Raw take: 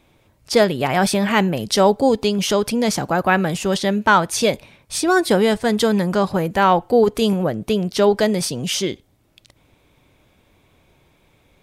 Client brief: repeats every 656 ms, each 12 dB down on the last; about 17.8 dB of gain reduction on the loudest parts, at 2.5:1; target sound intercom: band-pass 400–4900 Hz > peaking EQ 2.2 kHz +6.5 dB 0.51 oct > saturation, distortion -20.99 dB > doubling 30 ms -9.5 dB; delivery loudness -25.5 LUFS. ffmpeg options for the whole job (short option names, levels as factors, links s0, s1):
-filter_complex "[0:a]acompressor=threshold=0.0126:ratio=2.5,highpass=400,lowpass=4900,equalizer=f=2200:t=o:w=0.51:g=6.5,aecho=1:1:656|1312|1968:0.251|0.0628|0.0157,asoftclip=threshold=0.0891,asplit=2[s0][s1];[s1]adelay=30,volume=0.335[s2];[s0][s2]amix=inputs=2:normalize=0,volume=3.35"